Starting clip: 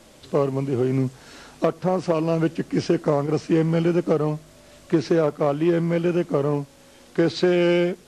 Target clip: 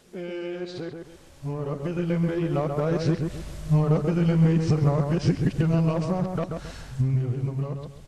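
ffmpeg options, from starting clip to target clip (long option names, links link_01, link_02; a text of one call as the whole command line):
ffmpeg -i in.wav -filter_complex "[0:a]areverse,acompressor=threshold=-26dB:ratio=6,asubboost=boost=9:cutoff=110,dynaudnorm=framelen=310:gausssize=13:maxgain=11.5dB,asplit=2[link_01][link_02];[link_02]adelay=135,lowpass=frequency=2000:poles=1,volume=-4.5dB,asplit=2[link_03][link_04];[link_04]adelay=135,lowpass=frequency=2000:poles=1,volume=0.32,asplit=2[link_05][link_06];[link_06]adelay=135,lowpass=frequency=2000:poles=1,volume=0.32,asplit=2[link_07][link_08];[link_08]adelay=135,lowpass=frequency=2000:poles=1,volume=0.32[link_09];[link_01][link_03][link_05][link_07][link_09]amix=inputs=5:normalize=0,volume=-6dB" out.wav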